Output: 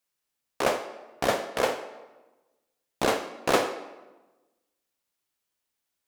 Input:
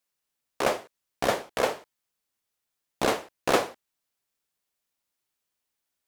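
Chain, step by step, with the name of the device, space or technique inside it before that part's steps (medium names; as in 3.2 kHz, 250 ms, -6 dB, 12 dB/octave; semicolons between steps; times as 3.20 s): filtered reverb send (on a send: high-pass 210 Hz 24 dB/octave + low-pass 8.9 kHz + reverberation RT60 1.2 s, pre-delay 39 ms, DRR 9.5 dB)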